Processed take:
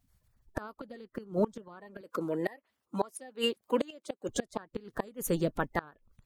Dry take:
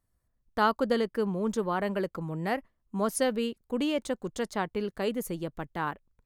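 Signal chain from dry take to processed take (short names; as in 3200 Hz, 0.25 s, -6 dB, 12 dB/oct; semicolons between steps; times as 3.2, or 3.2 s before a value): bin magnitudes rounded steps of 30 dB; 2.01–4.29 HPF 310 Hz 12 dB/oct; flipped gate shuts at -22 dBFS, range -26 dB; gain +6 dB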